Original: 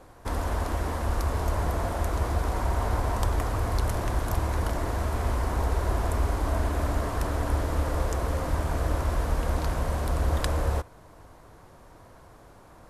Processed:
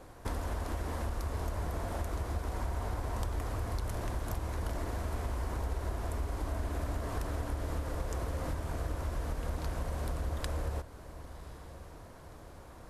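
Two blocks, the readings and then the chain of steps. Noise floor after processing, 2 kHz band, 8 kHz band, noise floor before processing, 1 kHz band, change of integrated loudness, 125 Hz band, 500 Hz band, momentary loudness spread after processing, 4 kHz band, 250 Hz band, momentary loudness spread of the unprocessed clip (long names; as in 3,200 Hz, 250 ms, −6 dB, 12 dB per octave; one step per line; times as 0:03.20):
−51 dBFS, −9.0 dB, −8.0 dB, −51 dBFS, −10.0 dB, −8.5 dB, −8.5 dB, −9.0 dB, 12 LU, −8.0 dB, −8.0 dB, 2 LU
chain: parametric band 1,000 Hz −2.5 dB 1.4 octaves
downward compressor 6 to 1, threshold −32 dBFS, peak gain reduction 11.5 dB
feedback delay with all-pass diffusion 1,081 ms, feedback 47%, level −15.5 dB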